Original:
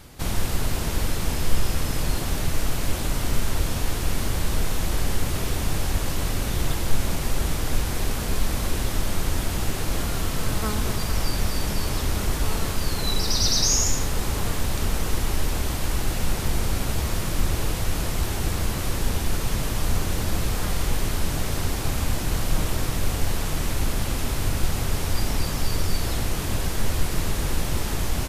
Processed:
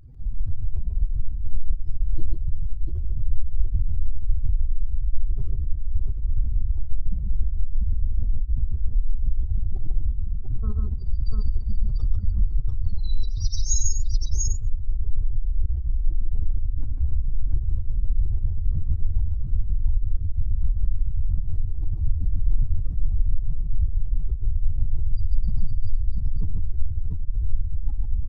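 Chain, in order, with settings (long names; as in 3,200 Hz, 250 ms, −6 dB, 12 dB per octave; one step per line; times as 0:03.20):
expanding power law on the bin magnitudes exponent 3.1
multi-tap delay 55/120/130/145/692 ms −15.5/−17.5/−17/−4/−3.5 dB
level +2 dB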